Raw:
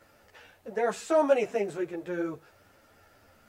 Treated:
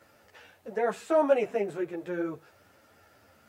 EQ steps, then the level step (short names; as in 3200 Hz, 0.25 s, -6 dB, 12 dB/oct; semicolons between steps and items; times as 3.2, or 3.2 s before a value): HPF 74 Hz; dynamic EQ 6200 Hz, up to -8 dB, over -55 dBFS, Q 0.81; 0.0 dB